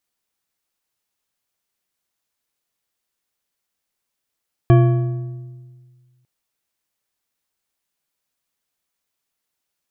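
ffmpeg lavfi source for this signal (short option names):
-f lavfi -i "aevalsrc='0.447*pow(10,-3*t/1.76)*sin(2*PI*126*t)+0.224*pow(10,-3*t/1.298)*sin(2*PI*347.4*t)+0.112*pow(10,-3*t/1.061)*sin(2*PI*680.9*t)+0.0562*pow(10,-3*t/0.912)*sin(2*PI*1125.6*t)+0.0282*pow(10,-3*t/0.809)*sin(2*PI*1680.8*t)+0.0141*pow(10,-3*t/0.732)*sin(2*PI*2348.6*t)+0.00708*pow(10,-3*t/0.672)*sin(2*PI*3126.1*t)':d=1.55:s=44100"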